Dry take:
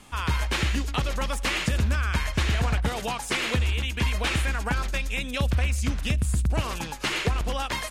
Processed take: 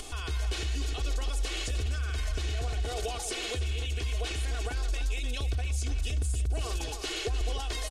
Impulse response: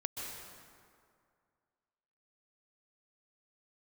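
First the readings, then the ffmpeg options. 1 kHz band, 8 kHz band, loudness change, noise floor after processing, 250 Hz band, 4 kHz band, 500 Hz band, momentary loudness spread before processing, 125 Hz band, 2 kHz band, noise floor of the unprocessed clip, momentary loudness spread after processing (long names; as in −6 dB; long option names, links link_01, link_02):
−10.5 dB, −3.0 dB, −6.0 dB, −36 dBFS, −12.5 dB, −5.5 dB, −5.0 dB, 4 LU, −6.0 dB, −10.5 dB, −35 dBFS, 2 LU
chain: -af "lowpass=9700,equalizer=frequency=220:width=0.36:gain=-4,aecho=1:1:2.7:0.76,aecho=1:1:299|598:0.282|0.0423,acompressor=mode=upward:threshold=-29dB:ratio=2.5,alimiter=limit=-21.5dB:level=0:latency=1:release=25,equalizer=frequency=125:width_type=o:width=1:gain=-7,equalizer=frequency=250:width_type=o:width=1:gain=-5,equalizer=frequency=500:width_type=o:width=1:gain=6,equalizer=frequency=1000:width_type=o:width=1:gain=-10,equalizer=frequency=2000:width_type=o:width=1:gain=-8"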